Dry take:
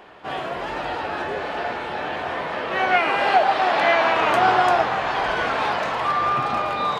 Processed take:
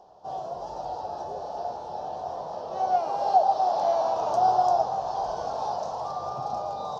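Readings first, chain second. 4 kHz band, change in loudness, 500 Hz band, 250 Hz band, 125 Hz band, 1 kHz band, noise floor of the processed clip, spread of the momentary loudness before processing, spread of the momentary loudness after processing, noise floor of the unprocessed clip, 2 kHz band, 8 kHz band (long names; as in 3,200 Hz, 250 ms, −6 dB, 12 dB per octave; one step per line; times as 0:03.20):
−16.0 dB, −6.0 dB, −4.5 dB, −13.5 dB, −8.5 dB, −4.5 dB, −38 dBFS, 10 LU, 13 LU, −30 dBFS, below −25 dB, can't be measured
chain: drawn EQ curve 160 Hz 0 dB, 290 Hz −8 dB, 770 Hz +7 dB, 2,100 Hz −30 dB, 5,700 Hz +9 dB, 8,900 Hz −11 dB
level −8.5 dB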